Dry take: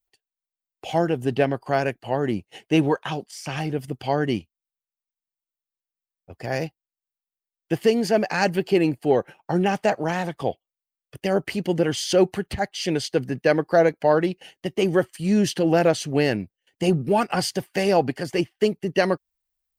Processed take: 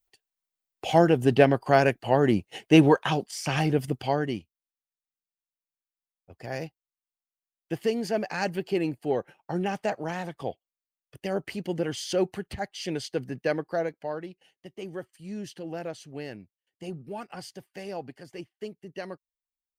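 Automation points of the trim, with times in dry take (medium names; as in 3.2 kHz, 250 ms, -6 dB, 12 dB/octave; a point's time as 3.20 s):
3.87 s +2.5 dB
4.35 s -7.5 dB
13.48 s -7.5 dB
14.28 s -17 dB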